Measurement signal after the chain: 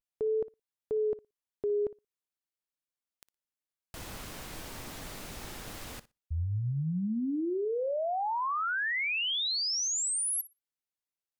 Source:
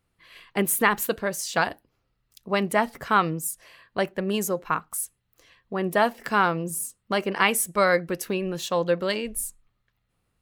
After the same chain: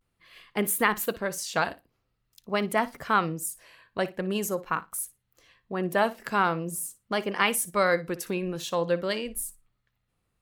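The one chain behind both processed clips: flutter echo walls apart 10 m, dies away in 0.2 s; vibrato 0.45 Hz 55 cents; trim -3 dB

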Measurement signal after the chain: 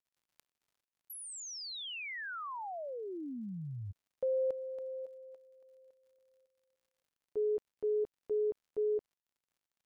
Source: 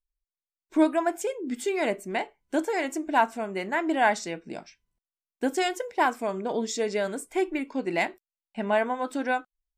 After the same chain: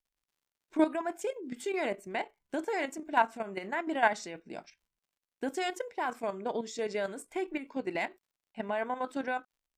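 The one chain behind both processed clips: bass shelf 310 Hz -4.5 dB; level held to a coarse grid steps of 10 dB; treble shelf 5.8 kHz -6 dB; crackle 86 per s -65 dBFS; trim -1 dB

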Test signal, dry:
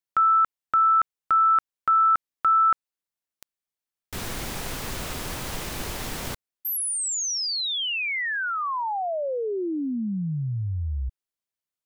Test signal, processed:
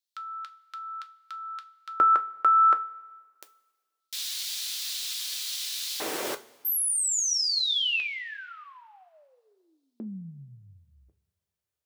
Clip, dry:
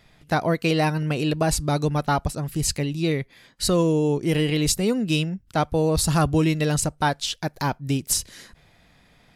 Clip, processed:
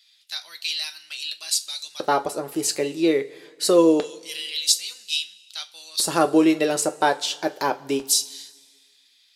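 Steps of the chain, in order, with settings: LFO high-pass square 0.25 Hz 410–3900 Hz; two-slope reverb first 0.22 s, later 1.6 s, from -20 dB, DRR 6.5 dB

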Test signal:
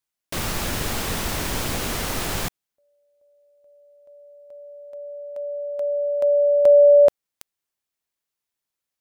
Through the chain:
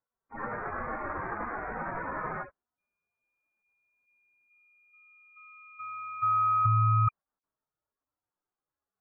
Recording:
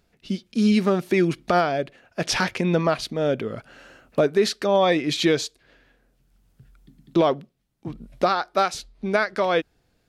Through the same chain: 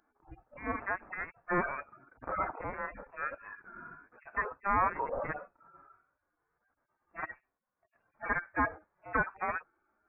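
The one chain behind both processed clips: harmonic-percussive separation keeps harmonic; sine folder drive 12 dB, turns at -7.5 dBFS; ladder high-pass 1.4 kHz, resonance 35%; frequency inversion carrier 3 kHz; trim -6 dB

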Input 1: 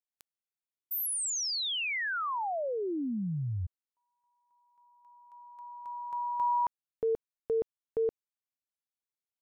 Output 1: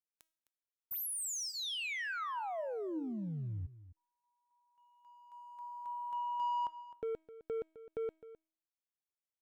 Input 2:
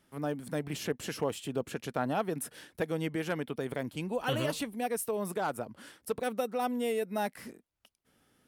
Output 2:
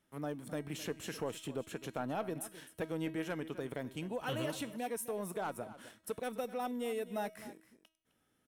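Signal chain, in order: waveshaping leveller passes 1; feedback comb 320 Hz, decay 0.49 s, harmonics all, mix 60%; in parallel at -2.5 dB: compression, threshold -43 dBFS; on the sum: band-stop 4.7 kHz, Q 8.7; delay 259 ms -15.5 dB; trim -4 dB

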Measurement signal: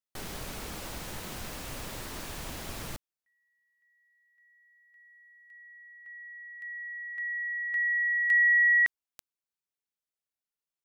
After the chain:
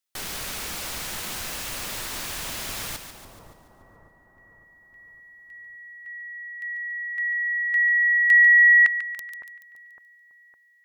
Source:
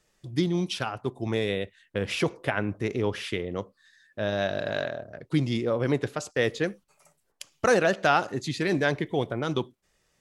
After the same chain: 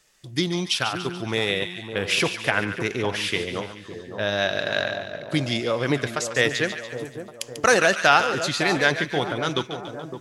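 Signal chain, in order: tilt shelf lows -5.5 dB, about 910 Hz; on a send: two-band feedback delay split 1.1 kHz, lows 559 ms, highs 143 ms, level -9 dB; on the sum: trim +4.5 dB

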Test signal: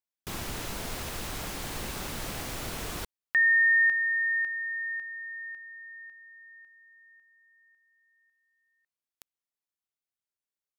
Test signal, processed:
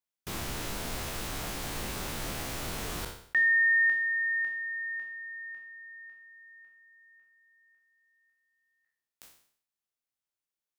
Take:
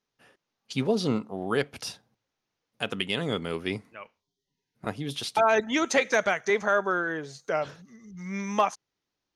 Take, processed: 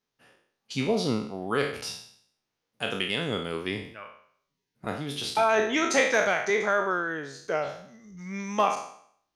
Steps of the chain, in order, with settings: spectral sustain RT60 0.61 s; trim -2 dB

